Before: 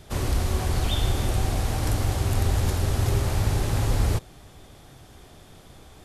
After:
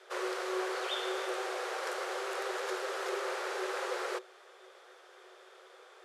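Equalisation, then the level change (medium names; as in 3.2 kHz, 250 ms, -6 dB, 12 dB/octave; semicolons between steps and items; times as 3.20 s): rippled Chebyshev high-pass 360 Hz, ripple 9 dB; distance through air 56 m; +3.0 dB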